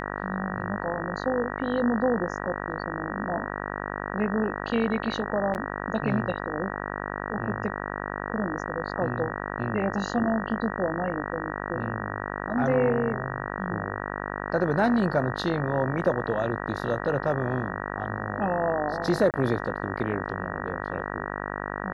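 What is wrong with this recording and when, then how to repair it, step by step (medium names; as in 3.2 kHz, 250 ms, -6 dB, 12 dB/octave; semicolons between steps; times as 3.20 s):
buzz 50 Hz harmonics 38 -33 dBFS
5.54–5.55 s: dropout 9.2 ms
19.31–19.34 s: dropout 28 ms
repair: de-hum 50 Hz, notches 38; interpolate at 5.54 s, 9.2 ms; interpolate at 19.31 s, 28 ms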